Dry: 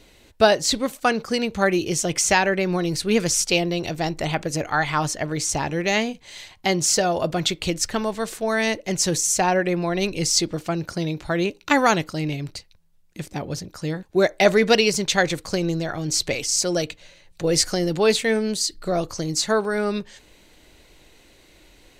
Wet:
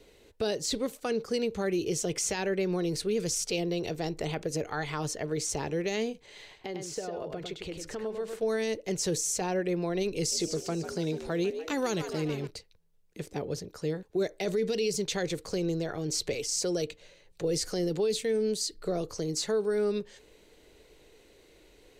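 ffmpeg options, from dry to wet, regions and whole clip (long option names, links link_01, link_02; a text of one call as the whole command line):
ffmpeg -i in.wav -filter_complex "[0:a]asettb=1/sr,asplit=3[link_01][link_02][link_03];[link_01]atrim=end=6.264[link_04];[link_02]atrim=start=6.26:end=8.39,asetpts=PTS-STARTPTS,afade=type=in:duration=0.004:curve=qsin,afade=type=out:start_time=2.126:duration=0.004:curve=qsin,bass=frequency=250:gain=-1,treble=frequency=4000:gain=-8,acompressor=threshold=-30dB:ratio=5:attack=3.2:release=140:knee=1:detection=peak,aecho=1:1:101:0.531,atrim=end_sample=93933[link_05];[link_03]atrim=start=8.386[link_06];[link_04][link_05]acrossfade=duration=0.004:curve1=hsin:curve2=qsin[link_07];[link_07][link_06]acrossfade=duration=0.004:curve1=qsin:curve2=hsin,asettb=1/sr,asplit=3[link_08][link_09][link_10];[link_08]atrim=end=10.164[link_11];[link_09]atrim=start=10.16:end=12.47,asetpts=PTS-STARTPTS,afade=type=in:duration=0.004:curve=qsin,afade=type=out:start_time=2.306:duration=0.004:curve=qsin,bass=frequency=250:gain=0,treble=frequency=4000:gain=3,asplit=7[link_12][link_13][link_14][link_15][link_16][link_17][link_18];[link_13]adelay=146,afreqshift=72,volume=-14.5dB[link_19];[link_14]adelay=292,afreqshift=144,volume=-19.4dB[link_20];[link_15]adelay=438,afreqshift=216,volume=-24.3dB[link_21];[link_16]adelay=584,afreqshift=288,volume=-29.1dB[link_22];[link_17]adelay=730,afreqshift=360,volume=-34dB[link_23];[link_18]adelay=876,afreqshift=432,volume=-38.9dB[link_24];[link_12][link_19][link_20][link_21][link_22][link_23][link_24]amix=inputs=7:normalize=0,atrim=end_sample=101871[link_25];[link_10]atrim=start=12.466[link_26];[link_11][link_25]acrossfade=duration=0.004:curve1=hsin:curve2=qsin[link_27];[link_27][link_26]acrossfade=duration=0.004:curve1=qsin:curve2=hsin,equalizer=frequency=440:width_type=o:width=0.49:gain=12.5,acrossover=split=320|3000[link_28][link_29][link_30];[link_29]acompressor=threshold=-25dB:ratio=2.5[link_31];[link_28][link_31][link_30]amix=inputs=3:normalize=0,alimiter=limit=-13dB:level=0:latency=1:release=21,volume=-8dB" out.wav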